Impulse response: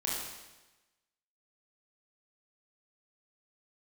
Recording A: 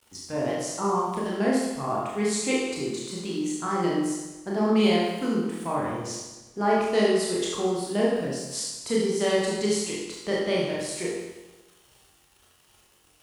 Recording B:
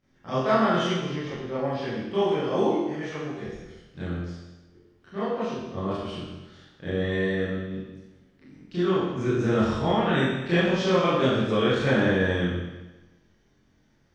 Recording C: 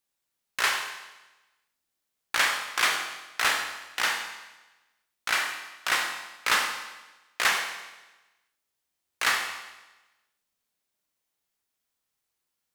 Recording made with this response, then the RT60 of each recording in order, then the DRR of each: A; 1.1, 1.1, 1.1 s; -5.5, -13.0, 4.0 dB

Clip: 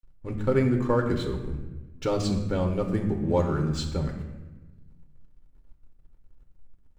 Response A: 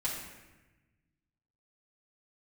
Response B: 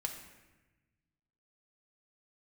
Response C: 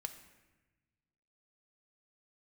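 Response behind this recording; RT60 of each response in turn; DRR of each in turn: B; 1.1, 1.1, 1.1 s; -8.0, 1.5, 6.0 dB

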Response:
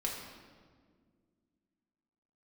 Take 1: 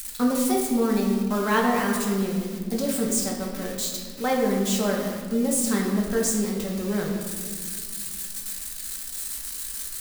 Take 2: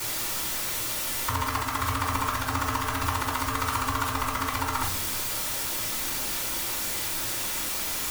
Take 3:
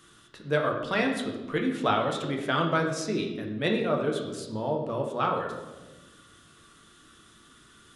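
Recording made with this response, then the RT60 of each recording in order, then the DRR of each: 1; 1.8, 0.55, 1.2 s; -3.0, -8.0, 1.5 dB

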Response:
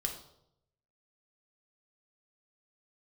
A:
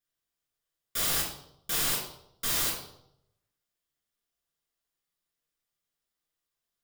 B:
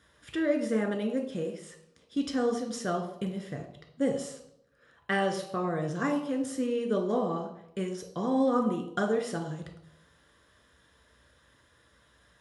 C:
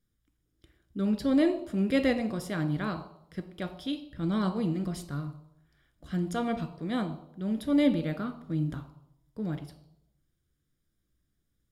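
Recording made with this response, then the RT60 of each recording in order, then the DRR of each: B; 0.75, 0.75, 0.75 s; -4.0, 2.5, 8.0 dB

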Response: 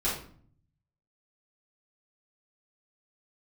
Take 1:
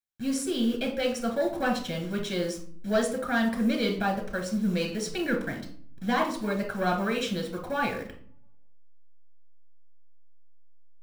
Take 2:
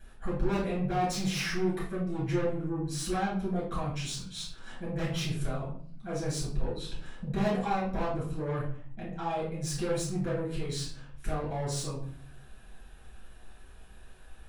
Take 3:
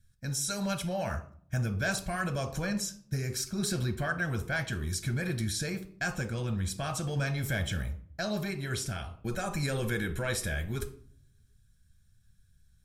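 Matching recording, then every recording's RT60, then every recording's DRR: 2; 0.50, 0.50, 0.50 s; 1.5, -8.5, 7.5 dB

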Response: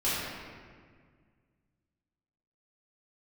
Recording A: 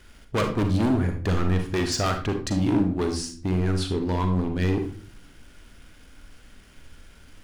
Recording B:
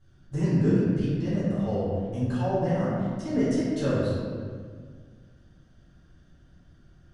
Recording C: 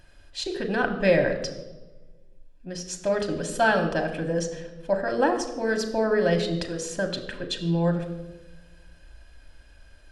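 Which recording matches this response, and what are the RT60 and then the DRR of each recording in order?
B; not exponential, 1.8 s, 1.1 s; 5.0, -11.0, 4.0 dB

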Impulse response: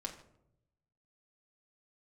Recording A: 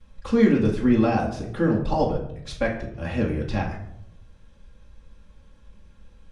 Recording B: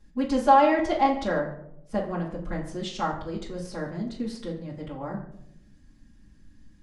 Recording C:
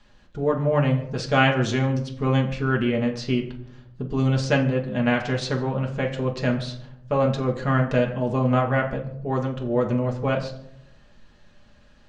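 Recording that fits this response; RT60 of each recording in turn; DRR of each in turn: C; 0.75, 0.75, 0.80 s; -17.0, -9.0, 0.0 dB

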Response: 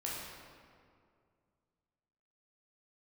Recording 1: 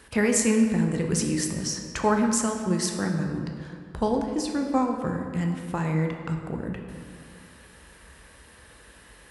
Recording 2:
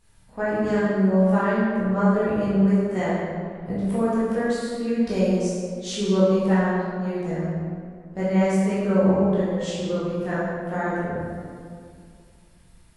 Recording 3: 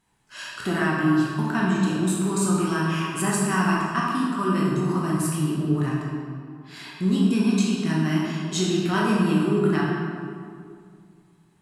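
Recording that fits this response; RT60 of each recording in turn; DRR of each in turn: 3; 2.3, 2.2, 2.2 s; 2.5, -11.0, -5.5 dB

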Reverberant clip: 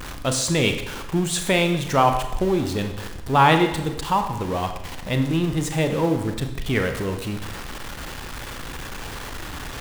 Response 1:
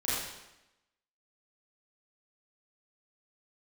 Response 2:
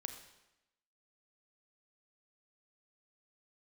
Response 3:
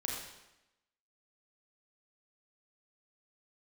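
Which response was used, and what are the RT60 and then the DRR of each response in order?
2; 0.95, 0.95, 0.95 s; -10.5, 6.0, -2.5 dB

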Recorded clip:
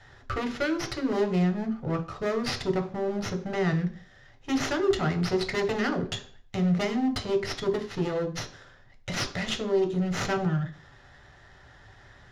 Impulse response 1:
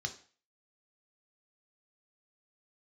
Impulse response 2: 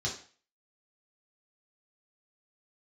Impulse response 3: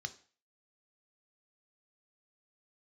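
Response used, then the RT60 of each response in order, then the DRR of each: 1; 0.40, 0.40, 0.40 s; 5.5, -3.5, 9.5 dB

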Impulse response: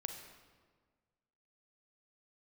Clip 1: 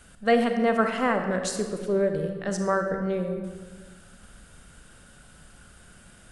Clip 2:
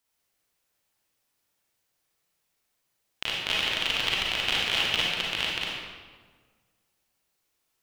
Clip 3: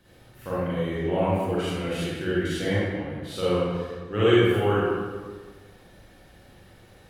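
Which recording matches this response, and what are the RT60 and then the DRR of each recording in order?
1; 1.6, 1.6, 1.6 s; 5.0, -4.5, -10.0 dB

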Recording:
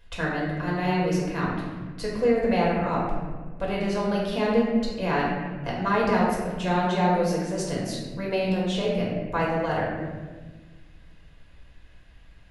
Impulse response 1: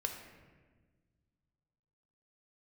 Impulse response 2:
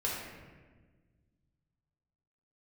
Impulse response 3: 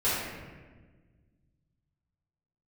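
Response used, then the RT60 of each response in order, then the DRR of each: 2; 1.4, 1.4, 1.4 s; 4.0, -5.0, -12.0 dB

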